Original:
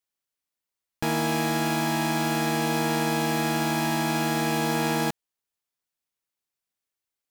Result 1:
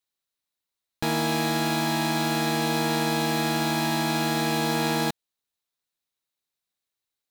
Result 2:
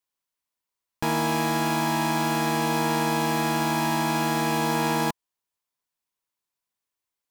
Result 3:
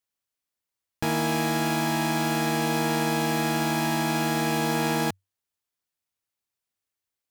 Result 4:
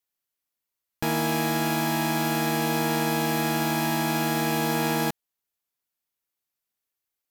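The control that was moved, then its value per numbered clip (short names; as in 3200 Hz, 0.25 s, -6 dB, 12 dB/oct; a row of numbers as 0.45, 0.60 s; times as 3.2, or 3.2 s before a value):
bell, frequency: 3900, 1000, 95, 13000 Hz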